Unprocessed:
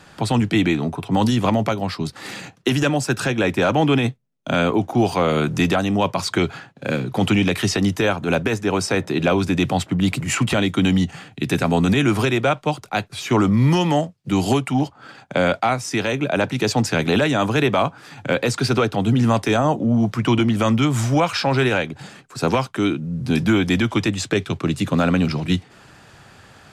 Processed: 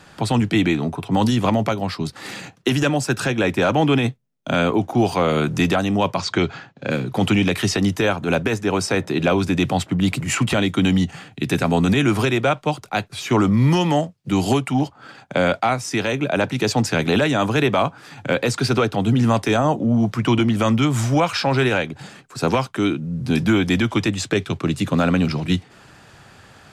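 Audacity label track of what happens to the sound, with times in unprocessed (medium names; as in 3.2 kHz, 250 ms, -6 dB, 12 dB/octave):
6.180000	6.910000	low-pass 6.8 kHz 24 dB/octave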